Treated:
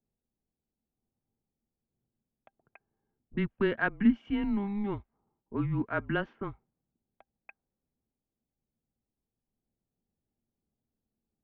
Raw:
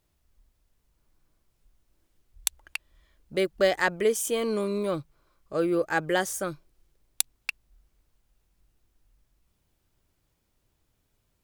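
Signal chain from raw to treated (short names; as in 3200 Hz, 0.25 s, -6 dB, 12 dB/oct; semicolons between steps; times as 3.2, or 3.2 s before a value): mistuned SSB -200 Hz 180–3100 Hz; small resonant body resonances 230/790/1600 Hz, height 8 dB, ringing for 65 ms; low-pass opened by the level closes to 450 Hz, open at -20.5 dBFS; gain -6 dB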